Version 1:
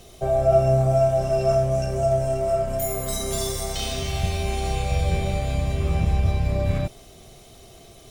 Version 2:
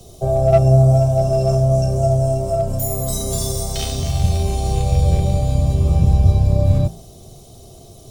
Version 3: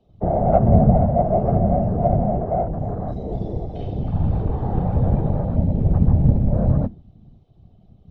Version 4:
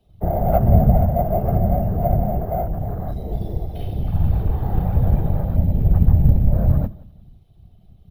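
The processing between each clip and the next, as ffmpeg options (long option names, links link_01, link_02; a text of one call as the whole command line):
ffmpeg -i in.wav -filter_complex "[0:a]equalizer=frequency=110:width_type=o:width=0.98:gain=6.5,bandreject=frequency=55.63:width_type=h:width=4,bandreject=frequency=111.26:width_type=h:width=4,bandreject=frequency=166.89:width_type=h:width=4,bandreject=frequency=222.52:width_type=h:width=4,bandreject=frequency=278.15:width_type=h:width=4,bandreject=frequency=333.78:width_type=h:width=4,bandreject=frequency=389.41:width_type=h:width=4,bandreject=frequency=445.04:width_type=h:width=4,bandreject=frequency=500.67:width_type=h:width=4,bandreject=frequency=556.3:width_type=h:width=4,bandreject=frequency=611.93:width_type=h:width=4,bandreject=frequency=667.56:width_type=h:width=4,bandreject=frequency=723.19:width_type=h:width=4,bandreject=frequency=778.82:width_type=h:width=4,bandreject=frequency=834.45:width_type=h:width=4,bandreject=frequency=890.08:width_type=h:width=4,bandreject=frequency=945.71:width_type=h:width=4,bandreject=frequency=1001.34:width_type=h:width=4,bandreject=frequency=1056.97:width_type=h:width=4,bandreject=frequency=1112.6:width_type=h:width=4,bandreject=frequency=1168.23:width_type=h:width=4,bandreject=frequency=1223.86:width_type=h:width=4,bandreject=frequency=1279.49:width_type=h:width=4,bandreject=frequency=1335.12:width_type=h:width=4,bandreject=frequency=1390.75:width_type=h:width=4,bandreject=frequency=1446.38:width_type=h:width=4,bandreject=frequency=1502.01:width_type=h:width=4,bandreject=frequency=1557.64:width_type=h:width=4,bandreject=frequency=1613.27:width_type=h:width=4,bandreject=frequency=1668.9:width_type=h:width=4,bandreject=frequency=1724.53:width_type=h:width=4,bandreject=frequency=1780.16:width_type=h:width=4,acrossover=split=130|1100|3500[link_01][link_02][link_03][link_04];[link_03]acrusher=bits=4:mix=0:aa=0.5[link_05];[link_01][link_02][link_05][link_04]amix=inputs=4:normalize=0,volume=5dB" out.wav
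ffmpeg -i in.wav -af "afwtdn=0.0562,lowpass=frequency=3100:width=0.5412,lowpass=frequency=3100:width=1.3066,afftfilt=real='hypot(re,im)*cos(2*PI*random(0))':imag='hypot(re,im)*sin(2*PI*random(1))':win_size=512:overlap=0.75,volume=3.5dB" out.wav
ffmpeg -i in.wav -af "equalizer=frequency=125:width_type=o:width=1:gain=-4,equalizer=frequency=250:width_type=o:width=1:gain=-8,equalizer=frequency=500:width_type=o:width=1:gain=-7,equalizer=frequency=1000:width_type=o:width=1:gain=-6,acrusher=samples=3:mix=1:aa=0.000001,aecho=1:1:176|352:0.0794|0.0222,volume=5dB" out.wav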